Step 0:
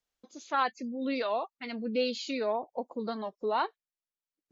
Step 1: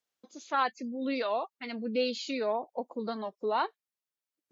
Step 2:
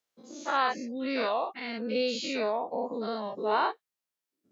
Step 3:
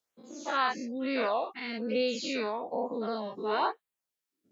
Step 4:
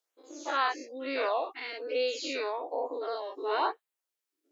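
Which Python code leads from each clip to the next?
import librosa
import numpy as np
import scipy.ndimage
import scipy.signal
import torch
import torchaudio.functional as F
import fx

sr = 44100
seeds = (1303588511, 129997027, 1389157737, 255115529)

y1 = scipy.signal.sosfilt(scipy.signal.butter(2, 130.0, 'highpass', fs=sr, output='sos'), x)
y2 = fx.spec_dilate(y1, sr, span_ms=120)
y2 = y2 * librosa.db_to_amplitude(-2.5)
y3 = fx.filter_lfo_notch(y2, sr, shape='sine', hz=1.1, low_hz=550.0, high_hz=6000.0, q=2.0)
y4 = fx.brickwall_highpass(y3, sr, low_hz=270.0)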